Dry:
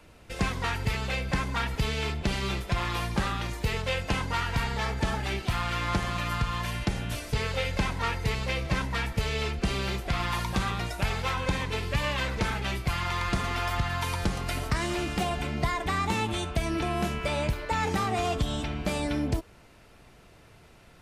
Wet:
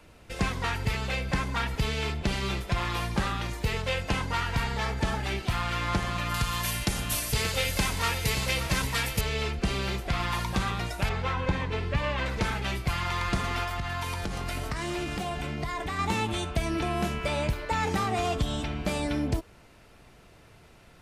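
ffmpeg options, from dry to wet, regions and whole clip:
-filter_complex "[0:a]asettb=1/sr,asplit=3[s0][s1][s2];[s0]atrim=end=6.344[s3];[s1]atrim=start=6.34:end=9.21,asetpts=PTS-STARTPTS,afade=t=in:d=0.004:c=qsin,afade=t=out:st=2.866:d=0.004:c=qsin,aemphasis=mode=production:type=75fm,aecho=1:1:579:0.316,atrim=end_sample=126567[s4];[s2]atrim=start=9.206[s5];[s3][s4]acrossfade=d=0.004:c1=hsin:c2=qsin[s6];[s6][s5]acrossfade=d=0.004:c1=qsin:c2=hsin,asettb=1/sr,asplit=3[s7][s8][s9];[s7]atrim=end=11.094[s10];[s8]atrim=start=11.09:end=12.26,asetpts=PTS-STARTPTS,afade=t=in:d=0.004:c=qsin,afade=t=out:st=1.166:d=0.004:c=qsin,aemphasis=mode=reproduction:type=75fm,asplit=2[s11][s12];[s12]adelay=12,volume=0.224[s13];[s11][s13]amix=inputs=2:normalize=0,atrim=end_sample=51597[s14];[s9]atrim=start=12.256[s15];[s10][s14]acrossfade=d=0.004:c1=hsin:c2=qsin[s16];[s16][s15]acrossfade=d=0.004:c1=qsin:c2=hsin,asettb=1/sr,asplit=3[s17][s18][s19];[s17]atrim=end=13.634[s20];[s18]atrim=start=13.63:end=15.99,asetpts=PTS-STARTPTS,afade=t=in:d=0.004:c=qsin,afade=t=out:st=2.356:d=0.004:c=qsin,acompressor=threshold=0.0398:ratio=6:attack=3.2:release=140:knee=1:detection=peak,asplit=2[s21][s22];[s22]adelay=20,volume=0.224[s23];[s21][s23]amix=inputs=2:normalize=0,atrim=end_sample=104076[s24];[s19]atrim=start=15.986[s25];[s20][s24]acrossfade=d=0.004:c1=hsin:c2=qsin[s26];[s26][s25]acrossfade=d=0.004:c1=qsin:c2=hsin"

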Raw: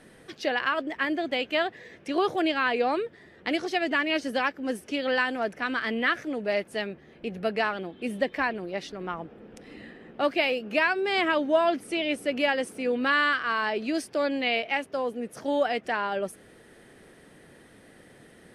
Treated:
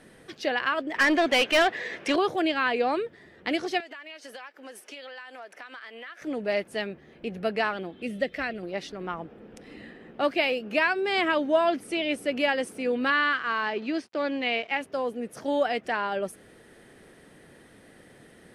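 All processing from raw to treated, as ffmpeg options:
-filter_complex "[0:a]asettb=1/sr,asplit=3[s0][s1][s2];[s0]atrim=end=0.944[s3];[s1]atrim=start=0.94:end=2.16,asetpts=PTS-STARTPTS,afade=t=in:d=0.004:c=qsin,afade=t=out:st=1.216:d=0.004:c=qsin,highshelf=f=8400:g=-5,asplit=2[s4][s5];[s5]highpass=f=720:p=1,volume=10,asoftclip=type=tanh:threshold=0.224[s6];[s4][s6]amix=inputs=2:normalize=0,lowpass=f=6600:p=1,volume=0.501[s7];[s2]atrim=start=2.156[s8];[s3][s7]acrossfade=d=0.004:c1=hsin:c2=qsin[s9];[s9][s8]acrossfade=d=0.004:c1=qsin:c2=hsin,asettb=1/sr,asplit=3[s10][s11][s12];[s10]atrim=end=3.804[s13];[s11]atrim=start=3.8:end=6.22,asetpts=PTS-STARTPTS,afade=t=in:d=0.004:c=qsin,afade=t=out:st=2.416:d=0.004:c=qsin,highpass=620,acompressor=threshold=0.0126:ratio=10:attack=3.2:release=140:knee=1:detection=peak[s14];[s12]atrim=start=6.216[s15];[s13][s14]acrossfade=d=0.004:c1=hsin:c2=qsin[s16];[s16][s15]acrossfade=d=0.004:c1=qsin:c2=hsin,asettb=1/sr,asplit=3[s17][s18][s19];[s17]atrim=end=8.024[s20];[s18]atrim=start=8.02:end=8.63,asetpts=PTS-STARTPTS,afade=t=in:d=0.004:c=qsin,afade=t=out:st=0.606:d=0.004:c=qsin,acrossover=split=6500[s21][s22];[s22]acompressor=threshold=0.00112:ratio=4:attack=1:release=60[s23];[s21][s23]amix=inputs=2:normalize=0,equalizer=f=930:t=o:w=0.75:g=-12,aecho=1:1:1.5:0.35,atrim=end_sample=26901[s24];[s19]atrim=start=8.626[s25];[s20][s24]acrossfade=d=0.004:c1=hsin:c2=qsin[s26];[s26][s25]acrossfade=d=0.004:c1=qsin:c2=hsin,asettb=1/sr,asplit=3[s27][s28][s29];[s27]atrim=end=13.104[s30];[s28]atrim=start=13.1:end=14.81,asetpts=PTS-STARTPTS,afade=t=in:d=0.004:c=qsin,afade=t=out:st=1.706:d=0.004:c=qsin,equalizer=f=620:w=5:g=-3.5,aeval=exprs='sgn(val(0))*max(abs(val(0))-0.00355,0)':c=same,highpass=110,lowpass=4100[s31];[s29]atrim=start=14.806[s32];[s30][s31]acrossfade=d=0.004:c1=hsin:c2=qsin[s33];[s33][s32]acrossfade=d=0.004:c1=qsin:c2=hsin"

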